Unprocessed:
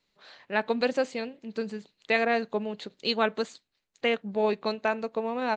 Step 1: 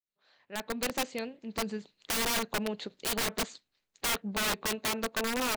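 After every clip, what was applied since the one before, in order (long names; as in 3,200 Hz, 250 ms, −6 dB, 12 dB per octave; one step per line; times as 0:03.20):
fade in at the beginning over 1.70 s
wrap-around overflow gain 25 dB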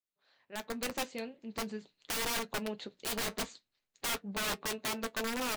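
flanger 0.45 Hz, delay 6.4 ms, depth 3.2 ms, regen −58%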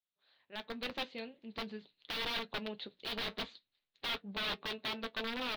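high shelf with overshoot 5,300 Hz −13 dB, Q 3
level −4.5 dB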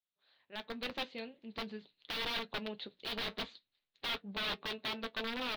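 no processing that can be heard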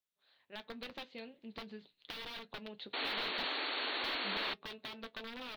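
downward compressor, threshold −43 dBFS, peak gain reduction 10 dB
sound drawn into the spectrogram noise, 0:02.93–0:04.54, 240–4,500 Hz −38 dBFS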